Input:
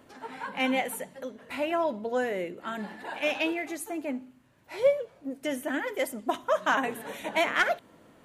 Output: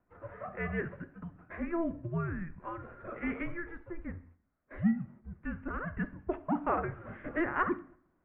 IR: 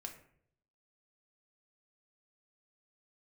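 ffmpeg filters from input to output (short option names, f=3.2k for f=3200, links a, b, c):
-filter_complex "[0:a]highpass=210,agate=range=-12dB:threshold=-51dB:ratio=16:detection=peak,asplit=2[a][b];[1:a]atrim=start_sample=2205[c];[b][c]afir=irnorm=-1:irlink=0,volume=-2dB[d];[a][d]amix=inputs=2:normalize=0,highpass=f=280:t=q:w=0.5412,highpass=f=280:t=q:w=1.307,lowpass=f=2.3k:t=q:w=0.5176,lowpass=f=2.3k:t=q:w=0.7071,lowpass=f=2.3k:t=q:w=1.932,afreqshift=-340,volume=-8dB"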